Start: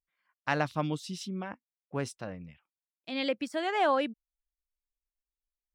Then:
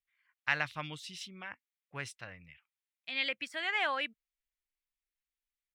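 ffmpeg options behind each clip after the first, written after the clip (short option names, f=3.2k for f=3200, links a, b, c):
-af "firequalizer=gain_entry='entry(120,0);entry(200,-10);entry(2000,13);entry(5000,3)':delay=0.05:min_phase=1,volume=-7dB"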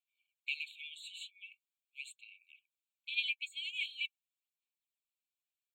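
-af "aphaser=in_gain=1:out_gain=1:delay=4.4:decay=0.5:speed=0.43:type=sinusoidal,afftfilt=real='re*eq(mod(floor(b*sr/1024/2200),2),1)':imag='im*eq(mod(floor(b*sr/1024/2200),2),1)':win_size=1024:overlap=0.75,volume=-1.5dB"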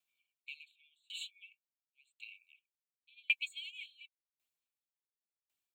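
-filter_complex "[0:a]acrossover=split=4100[a][b];[b]acrusher=bits=5:mode=log:mix=0:aa=0.000001[c];[a][c]amix=inputs=2:normalize=0,aeval=exprs='val(0)*pow(10,-37*if(lt(mod(0.91*n/s,1),2*abs(0.91)/1000),1-mod(0.91*n/s,1)/(2*abs(0.91)/1000),(mod(0.91*n/s,1)-2*abs(0.91)/1000)/(1-2*abs(0.91)/1000))/20)':c=same,volume=7dB"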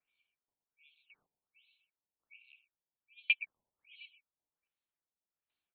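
-af "aecho=1:1:124|248|372|496|620:0.178|0.0871|0.0427|0.0209|0.0103,afftfilt=real='re*lt(b*sr/1024,990*pow(4700/990,0.5+0.5*sin(2*PI*1.3*pts/sr)))':imag='im*lt(b*sr/1024,990*pow(4700/990,0.5+0.5*sin(2*PI*1.3*pts/sr)))':win_size=1024:overlap=0.75,volume=2dB"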